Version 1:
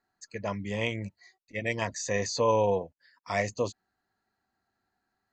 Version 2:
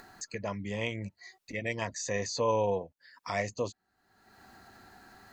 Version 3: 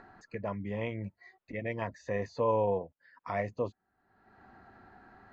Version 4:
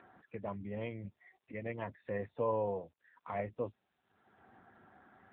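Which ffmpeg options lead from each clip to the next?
ffmpeg -i in.wav -af "acompressor=mode=upward:threshold=-28dB:ratio=2.5,volume=-3.5dB" out.wav
ffmpeg -i in.wav -af "lowpass=1700" out.wav
ffmpeg -i in.wav -af "volume=-4dB" -ar 8000 -c:a libopencore_amrnb -b:a 7950 out.amr

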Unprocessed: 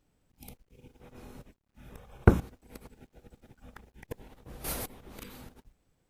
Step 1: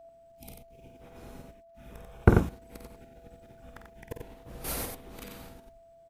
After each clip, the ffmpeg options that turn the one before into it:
ffmpeg -i in.wav -af "aeval=exprs='val(0)+0.00316*sin(2*PI*670*n/s)':channel_layout=same,aecho=1:1:49.56|90.38:0.447|0.562" out.wav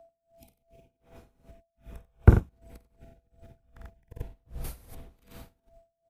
ffmpeg -i in.wav -filter_complex "[0:a]acrossover=split=130|1800|6700[link_01][link_02][link_03][link_04];[link_01]dynaudnorm=framelen=260:gausssize=11:maxgain=16dB[link_05];[link_05][link_02][link_03][link_04]amix=inputs=4:normalize=0,aeval=exprs='val(0)*pow(10,-26*(0.5-0.5*cos(2*PI*2.6*n/s))/20)':channel_layout=same,volume=-1.5dB" out.wav

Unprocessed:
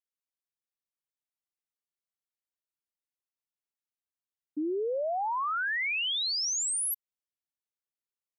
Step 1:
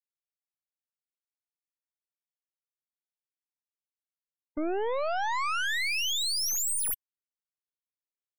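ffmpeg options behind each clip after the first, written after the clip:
ffmpeg -i in.wav -af "aeval=exprs='0.0447*(cos(1*acos(clip(val(0)/0.0447,-1,1)))-cos(1*PI/2))+0.0224*(cos(2*acos(clip(val(0)/0.0447,-1,1)))-cos(2*PI/2))+0.00708*(cos(4*acos(clip(val(0)/0.0447,-1,1)))-cos(4*PI/2))+0.00355*(cos(7*acos(clip(val(0)/0.0447,-1,1)))-cos(7*PI/2))':channel_layout=same,afftfilt=real='re*gte(hypot(re,im),0.00316)':imag='im*gte(hypot(re,im),0.00316)':win_size=1024:overlap=0.75" out.wav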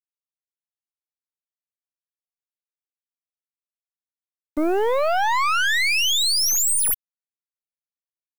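ffmpeg -i in.wav -filter_complex "[0:a]asplit=2[link_01][link_02];[link_02]asoftclip=type=tanh:threshold=-36dB,volume=-11dB[link_03];[link_01][link_03]amix=inputs=2:normalize=0,acrusher=bits=8:mix=0:aa=0.000001,volume=8.5dB" out.wav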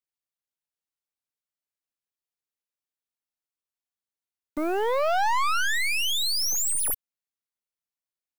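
ffmpeg -i in.wav -filter_complex "[0:a]acrossover=split=770[link_01][link_02];[link_01]alimiter=limit=-21.5dB:level=0:latency=1[link_03];[link_02]asoftclip=type=tanh:threshold=-24.5dB[link_04];[link_03][link_04]amix=inputs=2:normalize=0" out.wav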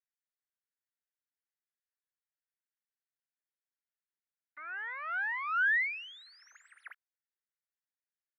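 ffmpeg -i in.wav -af "asuperpass=centerf=1700:order=4:qfactor=2.6" out.wav

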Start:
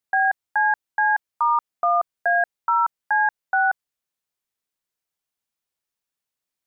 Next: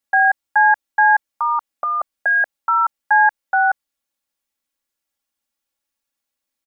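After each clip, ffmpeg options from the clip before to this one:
ffmpeg -i in.wav -af "aecho=1:1:3.6:0.92,volume=1.5dB" out.wav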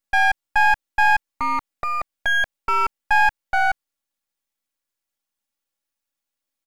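ffmpeg -i in.wav -af "aeval=exprs='if(lt(val(0),0),0.251*val(0),val(0))':channel_layout=same" out.wav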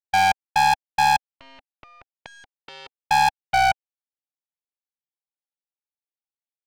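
ffmpeg -i in.wav -af "highpass=260,equalizer=frequency=270:width_type=q:width=4:gain=3,equalizer=frequency=470:width_type=q:width=4:gain=5,equalizer=frequency=790:width_type=q:width=4:gain=10,equalizer=frequency=1200:width_type=q:width=4:gain=-6,equalizer=frequency=1900:width_type=q:width=4:gain=-10,equalizer=frequency=4300:width_type=q:width=4:gain=-6,lowpass=frequency=4900:width=0.5412,lowpass=frequency=4900:width=1.3066,aeval=exprs='0.355*(cos(1*acos(clip(val(0)/0.355,-1,1)))-cos(1*PI/2))+0.0316*(cos(2*acos(clip(val(0)/0.355,-1,1)))-cos(2*PI/2))+0.141*(cos(3*acos(clip(val(0)/0.355,-1,1)))-cos(3*PI/2))+0.0126*(cos(4*acos(clip(val(0)/0.355,-1,1)))-cos(4*PI/2))+0.00398*(cos(8*acos(clip(val(0)/0.355,-1,1)))-cos(8*PI/2))':channel_layout=same,volume=-5.5dB" out.wav

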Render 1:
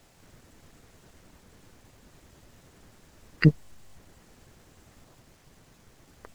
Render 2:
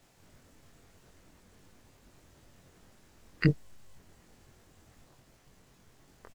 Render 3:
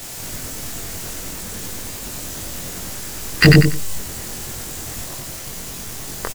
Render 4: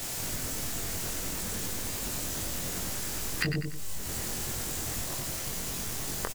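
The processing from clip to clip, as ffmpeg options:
ffmpeg -i in.wav -filter_complex "[0:a]asplit=2[link_01][link_02];[link_02]adelay=22,volume=-4dB[link_03];[link_01][link_03]amix=inputs=2:normalize=0,volume=-6dB" out.wav
ffmpeg -i in.wav -af "aecho=1:1:94|188|282:0.501|0.105|0.0221,crystalizer=i=3:c=0,apsyclip=28dB,volume=-3.5dB" out.wav
ffmpeg -i in.wav -af "acompressor=threshold=-26dB:ratio=10,volume=-2.5dB" out.wav

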